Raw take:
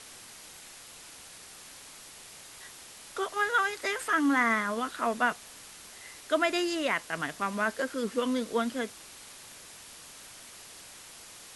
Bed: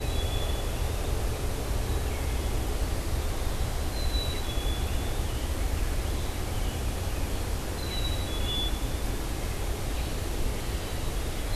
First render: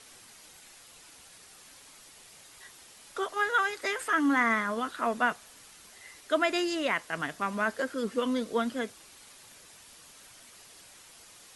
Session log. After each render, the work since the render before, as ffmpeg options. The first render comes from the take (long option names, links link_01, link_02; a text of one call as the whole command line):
ffmpeg -i in.wav -af "afftdn=noise_reduction=6:noise_floor=-49" out.wav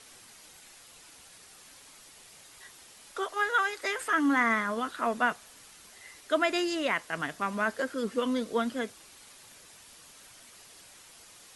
ffmpeg -i in.wav -filter_complex "[0:a]asettb=1/sr,asplit=3[link_01][link_02][link_03];[link_01]atrim=end=3.114[link_04];[link_02]atrim=start=3.11:end=3.95,asetpts=PTS-STARTPTS,afade=type=in:duration=0.004:curve=qsin,afade=type=out:start_time=0.836:duration=0.004:curve=qsin,equalizer=frequency=170:width=1.8:gain=-12.5[link_05];[link_03]atrim=start=3.946[link_06];[link_04][link_05]acrossfade=duration=0.004:curve1=hsin:curve2=qsin[link_07];[link_07][link_06]acrossfade=duration=0.004:curve1=qsin:curve2=hsin" out.wav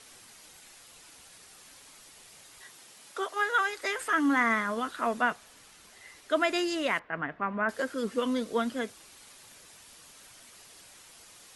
ffmpeg -i in.wav -filter_complex "[0:a]asettb=1/sr,asplit=3[link_01][link_02][link_03];[link_01]atrim=end=2.654[link_04];[link_02]atrim=start=2.65:end=3.61,asetpts=PTS-STARTPTS,afade=type=in:duration=0.004:curve=qsin,afade=type=out:start_time=0.956:duration=0.004:curve=qsin,highpass=frequency=100:width=0.5412,highpass=frequency=100:width=1.3066[link_05];[link_03]atrim=start=3.606[link_06];[link_04][link_05]acrossfade=duration=0.004:curve1=hsin:curve2=qsin[link_07];[link_07][link_06]acrossfade=duration=0.004:curve1=qsin:curve2=hsin,asettb=1/sr,asplit=3[link_08][link_09][link_10];[link_08]atrim=end=5.214[link_11];[link_09]atrim=start=5.21:end=6.37,asetpts=PTS-STARTPTS,afade=type=in:duration=0.004:curve=qsin,afade=type=out:start_time=1.156:duration=0.004:curve=qsin,highshelf=frequency=5400:gain=-4.5[link_12];[link_10]atrim=start=6.366[link_13];[link_11][link_12]acrossfade=duration=0.004:curve1=hsin:curve2=qsin[link_14];[link_14][link_13]acrossfade=duration=0.004:curve1=qsin:curve2=hsin,asettb=1/sr,asplit=3[link_15][link_16][link_17];[link_15]atrim=end=6.994[link_18];[link_16]atrim=start=6.99:end=7.69,asetpts=PTS-STARTPTS,afade=type=in:duration=0.004:curve=qsin,afade=type=out:start_time=0.696:duration=0.004:curve=qsin,lowpass=frequency=2200:width=0.5412,lowpass=frequency=2200:width=1.3066[link_19];[link_17]atrim=start=7.686[link_20];[link_18][link_19]acrossfade=duration=0.004:curve1=hsin:curve2=qsin[link_21];[link_21][link_20]acrossfade=duration=0.004:curve1=qsin:curve2=hsin" out.wav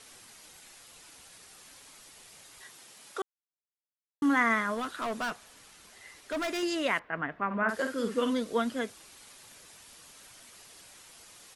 ffmpeg -i in.wav -filter_complex "[0:a]asettb=1/sr,asplit=3[link_01][link_02][link_03];[link_01]atrim=end=4.744[link_04];[link_02]atrim=start=4.74:end=6.63,asetpts=PTS-STARTPTS,afade=type=in:duration=0.004:curve=qsin,afade=type=out:start_time=1.886:duration=0.004:curve=qsin,asoftclip=type=hard:threshold=-29.5dB[link_05];[link_03]atrim=start=6.626[link_06];[link_04][link_05]acrossfade=duration=0.004:curve1=hsin:curve2=qsin[link_07];[link_07][link_06]acrossfade=duration=0.004:curve1=qsin:curve2=hsin,asplit=3[link_08][link_09][link_10];[link_08]afade=type=out:start_time=7.5:duration=0.02[link_11];[link_09]asplit=2[link_12][link_13];[link_13]adelay=50,volume=-6.5dB[link_14];[link_12][link_14]amix=inputs=2:normalize=0,afade=type=in:start_time=7.5:duration=0.02,afade=type=out:start_time=8.32:duration=0.02[link_15];[link_10]afade=type=in:start_time=8.32:duration=0.02[link_16];[link_11][link_15][link_16]amix=inputs=3:normalize=0,asplit=3[link_17][link_18][link_19];[link_17]atrim=end=3.22,asetpts=PTS-STARTPTS,afade=type=out:start_time=3.216:duration=0.004:curve=hsin[link_20];[link_18]atrim=start=3.22:end=4.22,asetpts=PTS-STARTPTS,volume=0[link_21];[link_19]atrim=start=4.22,asetpts=PTS-STARTPTS,afade=type=in:duration=0.004:curve=hsin[link_22];[link_20][link_21][link_22]concat=n=3:v=0:a=1" out.wav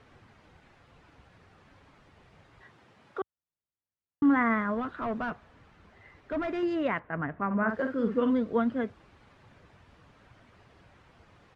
ffmpeg -i in.wav -af "lowpass=1700,equalizer=frequency=85:width=0.56:gain=13" out.wav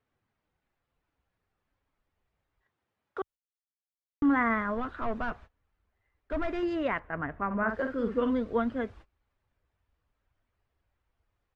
ffmpeg -i in.wav -af "agate=range=-24dB:threshold=-49dB:ratio=16:detection=peak,asubboost=boost=8.5:cutoff=52" out.wav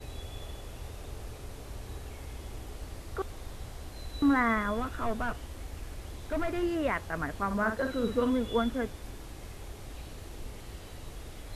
ffmpeg -i in.wav -i bed.wav -filter_complex "[1:a]volume=-12.5dB[link_01];[0:a][link_01]amix=inputs=2:normalize=0" out.wav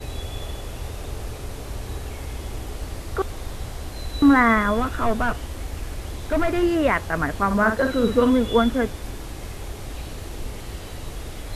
ffmpeg -i in.wav -af "volume=10dB" out.wav